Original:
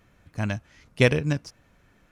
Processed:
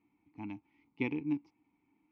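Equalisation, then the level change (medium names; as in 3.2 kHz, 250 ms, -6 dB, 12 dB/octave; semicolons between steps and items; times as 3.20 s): vowel filter u; distance through air 130 m; 0.0 dB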